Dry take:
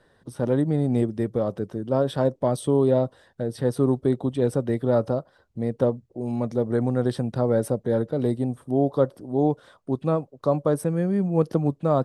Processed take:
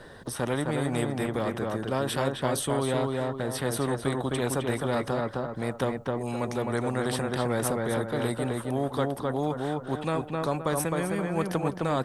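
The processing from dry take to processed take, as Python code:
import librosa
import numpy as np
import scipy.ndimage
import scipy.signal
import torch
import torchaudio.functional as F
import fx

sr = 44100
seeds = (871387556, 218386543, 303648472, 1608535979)

y = fx.echo_filtered(x, sr, ms=261, feedback_pct=25, hz=3000.0, wet_db=-4.0)
y = fx.dynamic_eq(y, sr, hz=4900.0, q=1.5, threshold_db=-56.0, ratio=4.0, max_db=-8)
y = fx.spectral_comp(y, sr, ratio=2.0)
y = F.gain(torch.from_numpy(y), -5.0).numpy()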